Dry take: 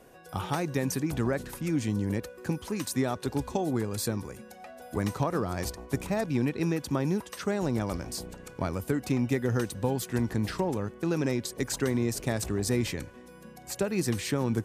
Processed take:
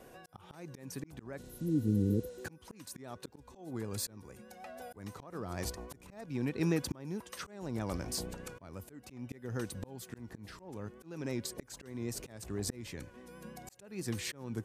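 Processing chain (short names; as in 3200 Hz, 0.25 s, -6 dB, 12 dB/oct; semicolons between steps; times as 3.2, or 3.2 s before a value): vibrato 6.3 Hz 39 cents; auto swell 0.742 s; spectral repair 1.46–2.42, 520–10000 Hz before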